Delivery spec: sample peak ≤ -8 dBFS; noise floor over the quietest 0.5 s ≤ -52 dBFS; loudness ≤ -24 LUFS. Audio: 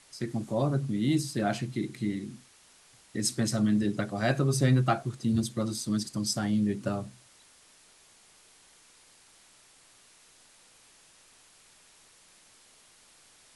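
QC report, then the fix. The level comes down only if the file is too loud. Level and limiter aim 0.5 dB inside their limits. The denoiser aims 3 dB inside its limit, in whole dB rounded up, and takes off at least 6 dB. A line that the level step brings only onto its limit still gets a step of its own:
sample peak -13.0 dBFS: pass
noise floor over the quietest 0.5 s -59 dBFS: pass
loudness -29.0 LUFS: pass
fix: none needed

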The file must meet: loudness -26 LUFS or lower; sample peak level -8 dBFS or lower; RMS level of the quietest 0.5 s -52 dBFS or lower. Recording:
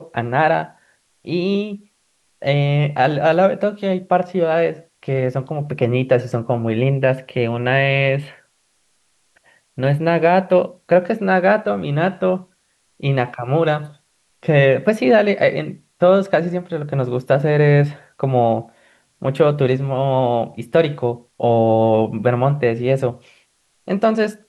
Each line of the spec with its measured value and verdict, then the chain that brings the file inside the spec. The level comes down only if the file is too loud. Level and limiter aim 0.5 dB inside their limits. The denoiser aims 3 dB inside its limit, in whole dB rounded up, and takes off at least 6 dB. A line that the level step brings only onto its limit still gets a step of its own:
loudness -18.0 LUFS: fail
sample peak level -3.5 dBFS: fail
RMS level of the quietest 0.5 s -63 dBFS: pass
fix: trim -8.5 dB

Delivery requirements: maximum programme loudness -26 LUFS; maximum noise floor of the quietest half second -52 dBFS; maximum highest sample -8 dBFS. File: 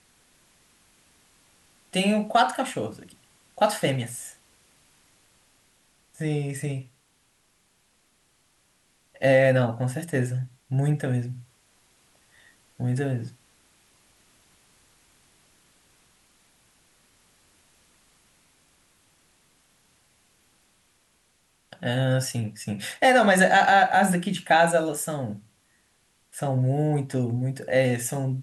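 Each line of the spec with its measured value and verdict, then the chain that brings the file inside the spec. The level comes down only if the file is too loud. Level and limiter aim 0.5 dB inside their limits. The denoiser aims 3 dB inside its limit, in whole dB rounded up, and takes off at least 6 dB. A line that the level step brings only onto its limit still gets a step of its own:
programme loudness -24.0 LUFS: fail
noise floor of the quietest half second -66 dBFS: pass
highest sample -7.0 dBFS: fail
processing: trim -2.5 dB

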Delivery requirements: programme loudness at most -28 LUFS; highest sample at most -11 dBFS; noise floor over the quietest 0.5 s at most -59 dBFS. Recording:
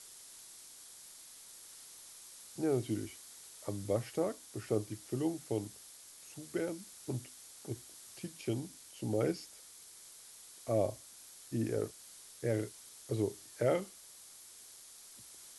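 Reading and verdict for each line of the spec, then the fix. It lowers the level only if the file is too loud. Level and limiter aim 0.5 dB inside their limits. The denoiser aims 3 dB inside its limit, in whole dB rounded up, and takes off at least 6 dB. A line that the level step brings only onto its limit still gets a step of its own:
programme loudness -38.0 LUFS: pass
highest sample -19.0 dBFS: pass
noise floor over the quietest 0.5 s -55 dBFS: fail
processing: noise reduction 7 dB, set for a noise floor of -55 dBFS

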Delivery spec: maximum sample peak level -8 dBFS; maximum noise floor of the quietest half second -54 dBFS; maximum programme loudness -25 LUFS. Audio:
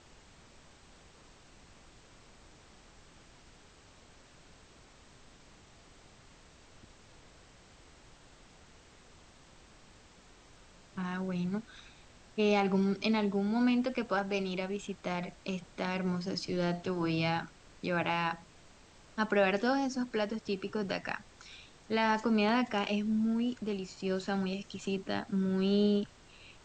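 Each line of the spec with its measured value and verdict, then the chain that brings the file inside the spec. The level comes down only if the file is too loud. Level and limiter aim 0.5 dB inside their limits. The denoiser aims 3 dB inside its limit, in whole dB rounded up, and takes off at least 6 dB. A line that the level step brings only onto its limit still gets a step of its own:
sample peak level -15.0 dBFS: pass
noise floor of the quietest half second -58 dBFS: pass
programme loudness -32.5 LUFS: pass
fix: none needed

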